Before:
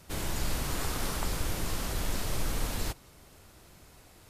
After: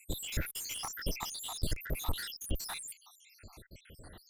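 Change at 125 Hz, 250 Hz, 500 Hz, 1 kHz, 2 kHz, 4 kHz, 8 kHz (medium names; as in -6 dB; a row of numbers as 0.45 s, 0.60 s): -5.5 dB, -7.0 dB, -7.5 dB, -6.5 dB, -4.0 dB, -1.5 dB, -2.5 dB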